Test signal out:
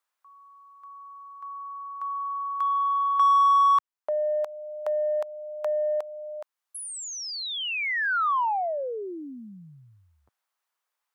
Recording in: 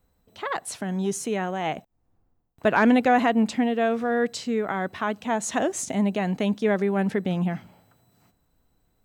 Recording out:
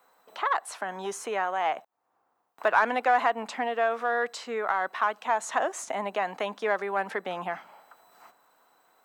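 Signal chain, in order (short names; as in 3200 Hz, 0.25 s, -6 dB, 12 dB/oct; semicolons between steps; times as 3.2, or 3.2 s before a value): HPF 510 Hz 12 dB/oct; bell 1100 Hz +12 dB 1.7 oct; in parallel at -8 dB: soft clip -14 dBFS; on the sum: three-band squash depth 40%; gain -9 dB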